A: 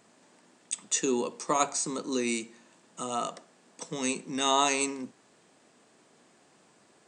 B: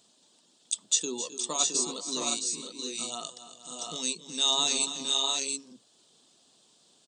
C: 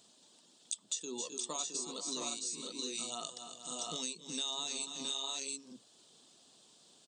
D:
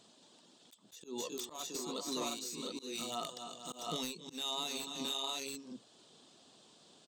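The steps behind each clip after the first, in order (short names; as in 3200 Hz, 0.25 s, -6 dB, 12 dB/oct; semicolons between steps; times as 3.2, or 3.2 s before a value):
reverb removal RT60 0.59 s; resonant high shelf 2700 Hz +9 dB, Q 3; on a send: tapped delay 0.261/0.283/0.474/0.666/0.71 s -15.5/-13.5/-17/-6/-5 dB; on the sum: gain -7.5 dB
compressor 6:1, threshold -36 dBFS, peak gain reduction 15.5 dB
self-modulated delay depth 0.086 ms; high shelf 5200 Hz -12 dB; auto swell 0.166 s; gain +5 dB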